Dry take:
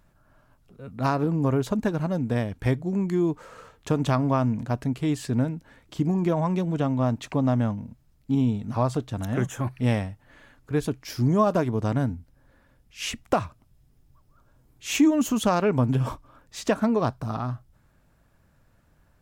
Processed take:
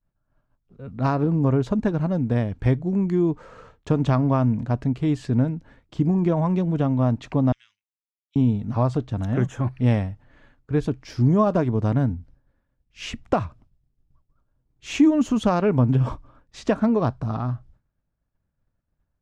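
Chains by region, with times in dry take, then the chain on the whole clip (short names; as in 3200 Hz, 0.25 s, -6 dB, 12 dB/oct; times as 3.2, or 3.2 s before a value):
7.52–8.36 inverse Chebyshev high-pass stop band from 750 Hz, stop band 60 dB + air absorption 64 m
whole clip: expander -48 dBFS; LPF 6500 Hz 12 dB/oct; tilt -1.5 dB/oct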